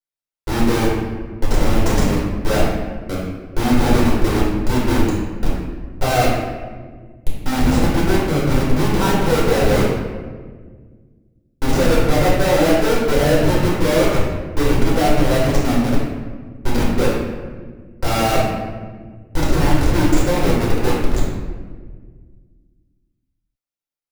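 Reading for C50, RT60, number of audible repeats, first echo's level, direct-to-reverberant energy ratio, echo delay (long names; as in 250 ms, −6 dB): 0.0 dB, 1.6 s, no echo audible, no echo audible, −7.0 dB, no echo audible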